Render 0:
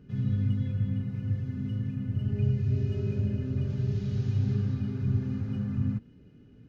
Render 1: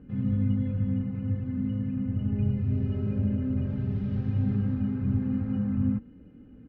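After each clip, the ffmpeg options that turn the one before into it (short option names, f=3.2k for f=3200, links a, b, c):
-af "lowpass=1.7k,aecho=1:1:3.8:0.56,volume=3.5dB"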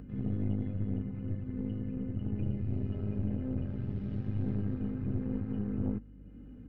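-af "aeval=exprs='(tanh(12.6*val(0)+0.75)-tanh(0.75))/12.6':c=same,acompressor=mode=upward:threshold=-40dB:ratio=2.5,aeval=exprs='val(0)+0.00398*(sin(2*PI*50*n/s)+sin(2*PI*2*50*n/s)/2+sin(2*PI*3*50*n/s)/3+sin(2*PI*4*50*n/s)/4+sin(2*PI*5*50*n/s)/5)':c=same,volume=-2.5dB"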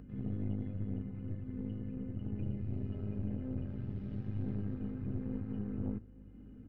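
-af "aecho=1:1:864:0.0944,volume=-4.5dB"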